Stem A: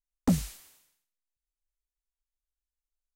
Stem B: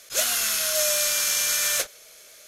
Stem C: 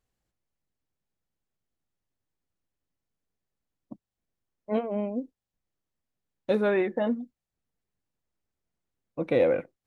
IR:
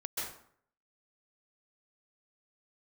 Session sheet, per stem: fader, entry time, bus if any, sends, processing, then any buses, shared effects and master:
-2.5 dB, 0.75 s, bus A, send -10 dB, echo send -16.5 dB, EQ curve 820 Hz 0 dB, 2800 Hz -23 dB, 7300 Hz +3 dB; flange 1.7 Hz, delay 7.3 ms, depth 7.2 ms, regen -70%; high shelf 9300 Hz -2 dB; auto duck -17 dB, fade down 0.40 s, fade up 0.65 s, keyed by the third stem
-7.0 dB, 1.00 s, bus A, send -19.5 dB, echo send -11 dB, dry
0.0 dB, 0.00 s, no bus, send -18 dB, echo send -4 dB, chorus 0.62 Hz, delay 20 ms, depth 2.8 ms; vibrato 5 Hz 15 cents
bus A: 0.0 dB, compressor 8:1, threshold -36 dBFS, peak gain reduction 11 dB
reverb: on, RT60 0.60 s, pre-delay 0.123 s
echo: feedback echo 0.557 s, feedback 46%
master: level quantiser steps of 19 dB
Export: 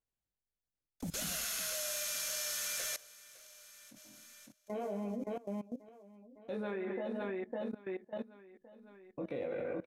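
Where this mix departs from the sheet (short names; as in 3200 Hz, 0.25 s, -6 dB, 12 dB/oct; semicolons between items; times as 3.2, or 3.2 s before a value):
stem A -2.5 dB -> -13.0 dB; reverb return +9.0 dB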